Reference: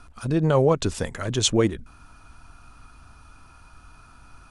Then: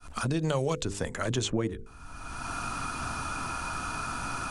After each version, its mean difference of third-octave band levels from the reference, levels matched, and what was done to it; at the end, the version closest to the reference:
14.0 dB: fade in at the beginning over 0.72 s
parametric band 7,400 Hz +5 dB 0.89 octaves
mains-hum notches 50/100/150/200/250/300/350/400/450/500 Hz
multiband upward and downward compressor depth 100%
level −3.5 dB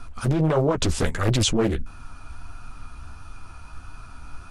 4.5 dB: low-shelf EQ 65 Hz +8.5 dB
in parallel at 0 dB: compressor whose output falls as the input rises −24 dBFS, ratio −0.5
on the sum: flanger 1.5 Hz, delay 7.8 ms, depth 7.1 ms, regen −17%
highs frequency-modulated by the lows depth 0.91 ms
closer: second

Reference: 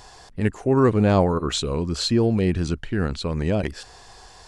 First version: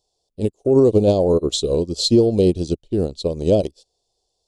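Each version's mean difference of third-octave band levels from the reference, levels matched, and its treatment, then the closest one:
9.0 dB: drawn EQ curve 220 Hz 0 dB, 330 Hz +6 dB, 570 Hz +9 dB, 1,700 Hz −26 dB, 3,500 Hz +7 dB
brickwall limiter −11.5 dBFS, peak gain reduction 8 dB
expander for the loud parts 2.5 to 1, over −40 dBFS
level +6 dB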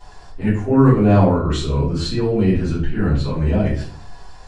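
6.5 dB: high-shelf EQ 3,800 Hz −9 dB
flanger 1 Hz, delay 6.8 ms, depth 1.2 ms, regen +73%
rectangular room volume 51 cubic metres, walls mixed, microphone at 3.1 metres
level −6 dB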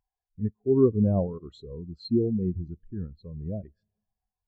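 14.5 dB: four-comb reverb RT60 2.6 s, combs from 29 ms, DRR 19 dB
in parallel at −1 dB: downward compressor, threshold −32 dBFS, peak gain reduction 18 dB
on the sum: every bin expanded away from the loudest bin 2.5 to 1
level −3 dB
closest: second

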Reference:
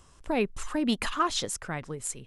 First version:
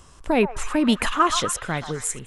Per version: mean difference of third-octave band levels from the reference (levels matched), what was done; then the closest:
2.0 dB: dynamic equaliser 4,600 Hz, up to −6 dB, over −51 dBFS, Q 2.9
on a send: echo through a band-pass that steps 126 ms, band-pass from 970 Hz, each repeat 0.7 octaves, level −7 dB
on the sum: level +7.5 dB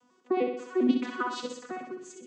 10.0 dB: vocoder with an arpeggio as carrier bare fifth, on B3, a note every 100 ms
on a send: flutter between parallel walls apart 10.9 metres, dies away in 0.71 s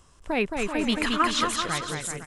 7.5 dB: dynamic equaliser 2,200 Hz, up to +6 dB, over −45 dBFS, Q 0.82
on a send: bouncing-ball delay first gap 220 ms, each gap 0.75×, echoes 5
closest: first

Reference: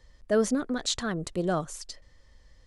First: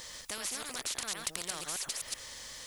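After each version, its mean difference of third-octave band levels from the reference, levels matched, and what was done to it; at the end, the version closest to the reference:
16.0 dB: delay that plays each chunk backwards 126 ms, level −6 dB
spectral tilt +4.5 dB per octave
downward compressor 2 to 1, threshold −29 dBFS, peak gain reduction 8.5 dB
every bin compressed towards the loudest bin 4 to 1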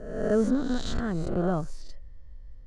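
7.5 dB: peak hold with a rise ahead of every peak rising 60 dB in 1.00 s
high-shelf EQ 8,200 Hz −3.5 dB
in parallel at −9 dB: dead-zone distortion −36 dBFS
on the sum: spectral tilt −3.5 dB per octave
level −8 dB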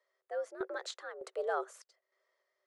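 9.5 dB: high-shelf EQ 2,300 Hz −10 dB
frequency shifter +83 Hz
Chebyshev high-pass with heavy ripple 370 Hz, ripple 6 dB
sample-and-hold tremolo 3.3 Hz, depth 80%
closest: second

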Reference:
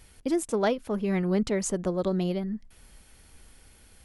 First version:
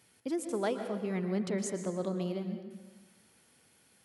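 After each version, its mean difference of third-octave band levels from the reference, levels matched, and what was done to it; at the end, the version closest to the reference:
3.5 dB: high-pass filter 120 Hz 24 dB per octave
dense smooth reverb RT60 1.3 s, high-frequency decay 0.75×, pre-delay 105 ms, DRR 7 dB
level −7.5 dB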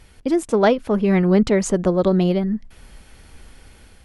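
1.5 dB: high-shelf EQ 6,600 Hz −11.5 dB
automatic gain control gain up to 3.5 dB
level +6.5 dB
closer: second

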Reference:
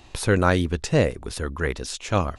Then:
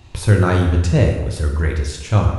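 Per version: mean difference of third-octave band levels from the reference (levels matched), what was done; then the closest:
6.0 dB: parametric band 80 Hz +12.5 dB 1.7 octaves
dense smooth reverb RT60 1.1 s, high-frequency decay 0.75×, DRR 1 dB
level −1.5 dB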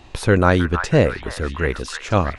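3.0 dB: high-shelf EQ 4,800 Hz −9 dB
echo through a band-pass that steps 316 ms, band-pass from 1,300 Hz, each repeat 0.7 octaves, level −5 dB
level +4.5 dB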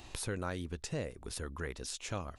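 4.5 dB: high-shelf EQ 7,400 Hz +7 dB
downward compressor 2.5 to 1, threshold −39 dBFS, peak gain reduction 16.5 dB
level −3 dB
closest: second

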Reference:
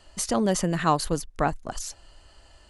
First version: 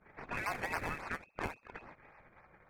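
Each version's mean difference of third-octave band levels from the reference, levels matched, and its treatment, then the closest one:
13.0 dB: gate on every frequency bin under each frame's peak −20 dB weak
voice inversion scrambler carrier 2,600 Hz
in parallel at −4 dB: sample-and-hold swept by an LFO 24×, swing 100% 3.6 Hz
on the sum: low-pass that shuts in the quiet parts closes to 1,700 Hz, open at −36 dBFS
level +2 dB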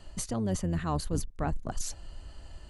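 6.0 dB: sub-octave generator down 1 octave, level −6 dB
low-shelf EQ 320 Hz +10.5 dB
notch filter 5,300 Hz, Q 20
reversed playback
downward compressor 10 to 1, threshold −25 dBFS, peak gain reduction 13.5 dB
reversed playback
level −1.5 dB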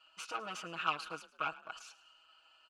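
8.0 dB: tube saturation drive 22 dB, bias 0.7
pair of resonant band-passes 1,900 Hz, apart 0.92 octaves
comb filter 6.3 ms, depth 99%
on a send: echo with shifted repeats 107 ms, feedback 43%, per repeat +39 Hz, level −18.5 dB
on the sum: level +3 dB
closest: second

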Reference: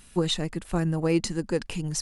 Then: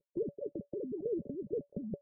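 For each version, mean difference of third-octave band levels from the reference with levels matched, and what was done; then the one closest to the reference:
15.5 dB: three sine waves on the formant tracks
output level in coarse steps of 12 dB
Chebyshev low-pass with heavy ripple 590 Hz, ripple 9 dB
every bin compressed towards the loudest bin 2 to 1
level −2 dB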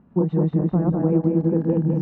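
12.0 dB: feedback delay that plays each chunk backwards 102 ms, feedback 68%, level 0 dB
Chebyshev band-pass filter 180–1,000 Hz, order 2
spectral tilt −4 dB per octave
downward compressor, threshold −15 dBFS, peak gain reduction 7.5 dB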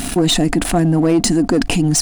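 6.5 dB: dynamic equaliser 8,800 Hz, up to +6 dB, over −46 dBFS, Q 1.1
leveller curve on the samples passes 2
hollow resonant body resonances 280/700 Hz, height 15 dB, ringing for 50 ms
envelope flattener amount 70%
level −2.5 dB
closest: third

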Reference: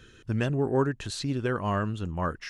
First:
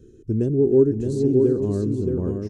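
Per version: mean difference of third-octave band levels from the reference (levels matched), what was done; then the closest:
10.5 dB: drawn EQ curve 180 Hz 0 dB, 400 Hz +8 dB, 630 Hz −14 dB, 1,200 Hz −25 dB, 3,100 Hz −25 dB, 6,900 Hz −9 dB, 9,800 Hz −11 dB
on a send: multi-tap delay 304/378/619/823 ms −18/−20/−5/−12 dB
on the sum: level +4 dB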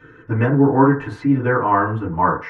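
7.0 dB: octave-band graphic EQ 125/250/500/1,000/2,000/4,000/8,000 Hz +8/+7/+5/+12/+10/−5/−11 dB
feedback delay network reverb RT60 0.38 s, low-frequency decay 0.7×, high-frequency decay 0.25×, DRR −9 dB
level −9 dB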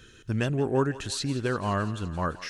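3.5 dB: high-shelf EQ 4,000 Hz +6 dB
feedback echo with a high-pass in the loop 171 ms, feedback 73%, high-pass 470 Hz, level −16 dB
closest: third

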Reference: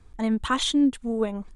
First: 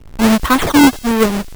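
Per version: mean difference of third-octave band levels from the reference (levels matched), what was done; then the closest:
14.5 dB: each half-wave held at its own peak
high-shelf EQ 4,800 Hz −9.5 dB
sample-and-hold swept by an LFO 14×, swing 160% 1.5 Hz
on a send: delay with a high-pass on its return 95 ms, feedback 68%, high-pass 4,100 Hz, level −15.5 dB
on the sum: level +9 dB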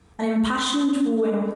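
8.0 dB: high-pass filter 110 Hz 12 dB per octave
on a send: repeating echo 186 ms, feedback 44%, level −19 dB
on the sum: dense smooth reverb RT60 1.1 s, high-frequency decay 0.45×, DRR −3 dB
brickwall limiter −18 dBFS, peak gain reduction 9.5 dB
level +3 dB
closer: second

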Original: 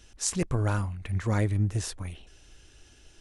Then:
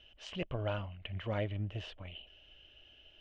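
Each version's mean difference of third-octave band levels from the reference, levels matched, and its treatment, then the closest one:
4.5 dB: transistor ladder low-pass 3,100 Hz, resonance 85%
parametric band 610 Hz +13.5 dB 0.49 octaves
level +1 dB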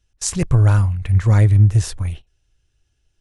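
6.5 dB: noise gate −42 dBFS, range −23 dB
low shelf with overshoot 170 Hz +7 dB, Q 1.5
level +6 dB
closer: first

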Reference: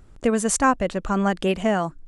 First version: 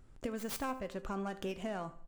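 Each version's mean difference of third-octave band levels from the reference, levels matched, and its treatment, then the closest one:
5.5 dB: stylus tracing distortion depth 0.3 ms
downward compressor, threshold −26 dBFS, peak gain reduction 12.5 dB
tuned comb filter 130 Hz, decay 0.34 s, harmonics all, mix 60%
repeating echo 77 ms, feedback 43%, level −18 dB
level −3.5 dB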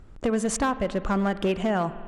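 4.0 dB: low-pass filter 3,600 Hz 6 dB per octave
downward compressor 8 to 1, threshold −21 dBFS, peak gain reduction 8 dB
hard clipping −20 dBFS, distortion −17 dB
spring reverb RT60 1.9 s, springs 50 ms, chirp 60 ms, DRR 14 dB
level +1.5 dB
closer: second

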